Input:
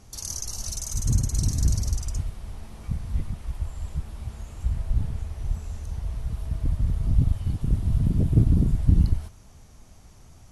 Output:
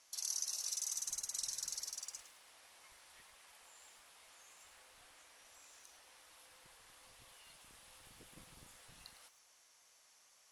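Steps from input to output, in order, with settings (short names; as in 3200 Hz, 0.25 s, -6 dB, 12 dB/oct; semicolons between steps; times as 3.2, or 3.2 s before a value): HPF 1400 Hz 12 dB/oct; frequency shift -140 Hz; lo-fi delay 0.108 s, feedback 35%, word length 9-bit, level -12.5 dB; gain -6 dB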